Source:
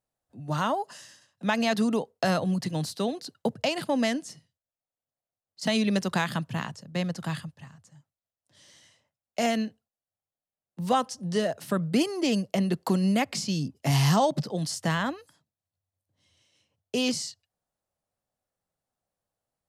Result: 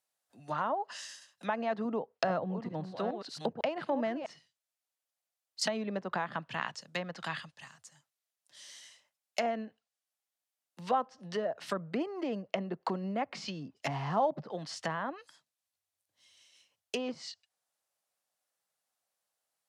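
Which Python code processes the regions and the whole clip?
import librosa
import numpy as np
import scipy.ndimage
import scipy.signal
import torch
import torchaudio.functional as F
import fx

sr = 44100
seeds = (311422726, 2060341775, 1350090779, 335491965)

y = fx.chain(x, sr, fx.reverse_delay(ms=420, wet_db=-9),
    fx.low_shelf(hz=160.0, db=7.0), at=(1.85, 4.3))
y = fx.env_lowpass_down(y, sr, base_hz=830.0, full_db=-23.5)
y = fx.highpass(y, sr, hz=430.0, slope=6)
y = fx.tilt_shelf(y, sr, db=-6.0, hz=860.0)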